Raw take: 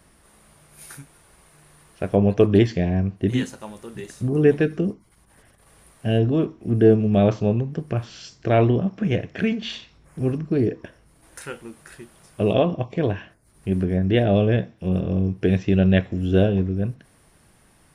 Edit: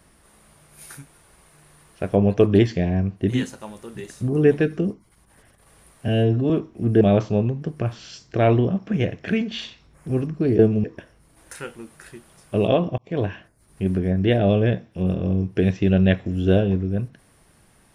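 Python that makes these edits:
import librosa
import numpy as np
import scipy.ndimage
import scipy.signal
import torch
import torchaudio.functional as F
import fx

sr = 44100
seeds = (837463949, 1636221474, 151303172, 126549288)

y = fx.edit(x, sr, fx.stretch_span(start_s=6.08, length_s=0.28, factor=1.5),
    fx.move(start_s=6.87, length_s=0.25, to_s=10.7),
    fx.fade_in_span(start_s=12.84, length_s=0.25), tone=tone)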